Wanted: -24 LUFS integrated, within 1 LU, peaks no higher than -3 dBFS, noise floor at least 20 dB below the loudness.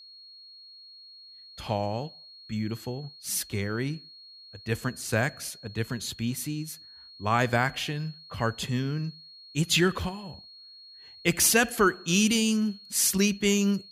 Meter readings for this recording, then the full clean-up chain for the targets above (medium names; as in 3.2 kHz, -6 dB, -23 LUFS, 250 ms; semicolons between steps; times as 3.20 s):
steady tone 4.3 kHz; tone level -47 dBFS; loudness -27.5 LUFS; peak level -10.0 dBFS; loudness target -24.0 LUFS
-> band-stop 4.3 kHz, Q 30; trim +3.5 dB